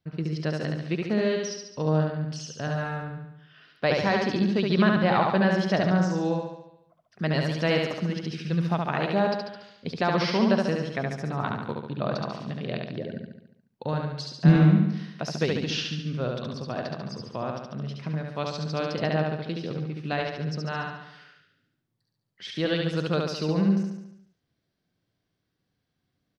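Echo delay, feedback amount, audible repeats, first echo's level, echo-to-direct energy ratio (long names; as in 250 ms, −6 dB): 71 ms, 56%, 7, −3.0 dB, −1.5 dB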